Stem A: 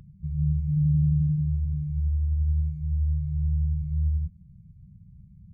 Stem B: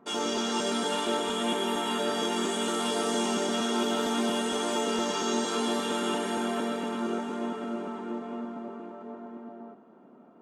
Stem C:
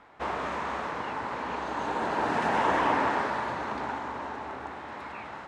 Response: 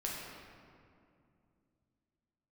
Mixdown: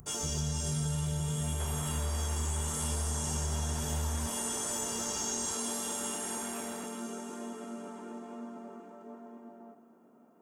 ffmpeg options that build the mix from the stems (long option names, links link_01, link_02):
-filter_complex "[0:a]volume=-4.5dB[link_01];[1:a]bandreject=frequency=50:width_type=h:width=6,bandreject=frequency=100:width_type=h:width=6,bandreject=frequency=150:width_type=h:width=6,bandreject=frequency=200:width_type=h:width=6,bandreject=frequency=250:width_type=h:width=6,bandreject=frequency=300:width_type=h:width=6,bandreject=frequency=350:width_type=h:width=6,acrossover=split=170|3000[link_02][link_03][link_04];[link_03]acompressor=threshold=-32dB:ratio=6[link_05];[link_02][link_05][link_04]amix=inputs=3:normalize=0,volume=-9dB,asplit=2[link_06][link_07];[link_07]volume=-11dB[link_08];[2:a]acompressor=threshold=-38dB:ratio=6,adelay=1400,volume=-6dB[link_09];[link_01][link_06]amix=inputs=2:normalize=0,aexciter=amount=6.2:drive=5.7:freq=5400,acompressor=threshold=-30dB:ratio=6,volume=0dB[link_10];[3:a]atrim=start_sample=2205[link_11];[link_08][link_11]afir=irnorm=-1:irlink=0[link_12];[link_09][link_10][link_12]amix=inputs=3:normalize=0"